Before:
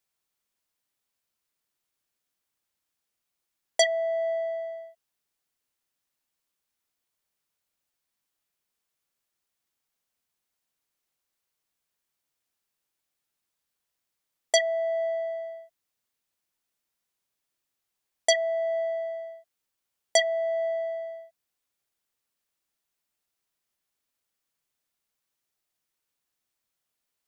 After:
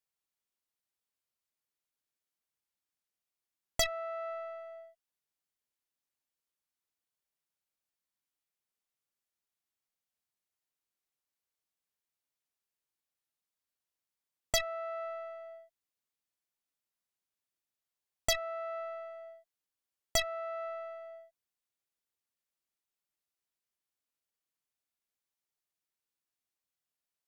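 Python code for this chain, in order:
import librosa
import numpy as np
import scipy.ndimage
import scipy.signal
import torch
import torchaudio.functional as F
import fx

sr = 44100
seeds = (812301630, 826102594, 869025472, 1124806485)

y = fx.cheby_harmonics(x, sr, harmonics=(6, 7), levels_db=(-13, -32), full_scale_db=-9.0)
y = fx.dynamic_eq(y, sr, hz=580.0, q=0.73, threshold_db=-37.0, ratio=4.0, max_db=-4)
y = y * 10.0 ** (-7.5 / 20.0)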